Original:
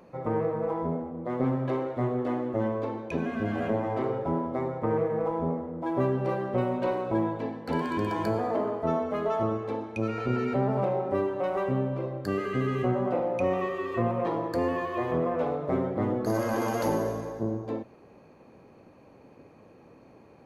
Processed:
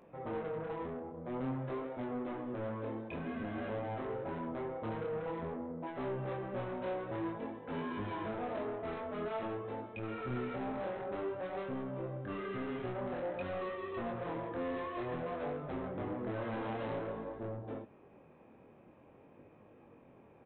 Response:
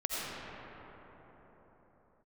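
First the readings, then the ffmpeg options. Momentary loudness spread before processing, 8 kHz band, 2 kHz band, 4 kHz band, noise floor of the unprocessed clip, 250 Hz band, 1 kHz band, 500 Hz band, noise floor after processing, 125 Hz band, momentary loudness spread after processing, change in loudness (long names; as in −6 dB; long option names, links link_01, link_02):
5 LU, can't be measured, −7.5 dB, −7.0 dB, −54 dBFS, −11.0 dB, −10.0 dB, −10.5 dB, −60 dBFS, −11.5 dB, 4 LU, −10.5 dB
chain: -af "aresample=8000,asoftclip=type=tanh:threshold=-29dB,aresample=44100,flanger=delay=19.5:depth=7.4:speed=0.51,volume=-3dB"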